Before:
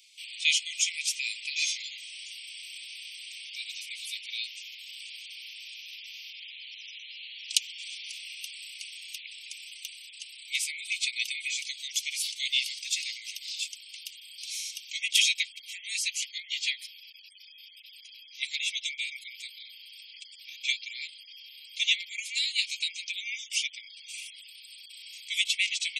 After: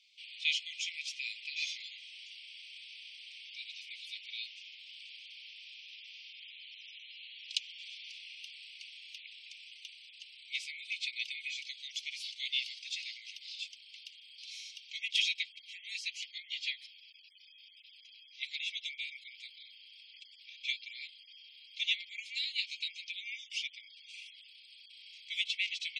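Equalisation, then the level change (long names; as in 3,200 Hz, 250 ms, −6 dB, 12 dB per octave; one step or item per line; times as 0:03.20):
resonant band-pass 6,900 Hz, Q 1.1
high-frequency loss of the air 350 metres
+8.0 dB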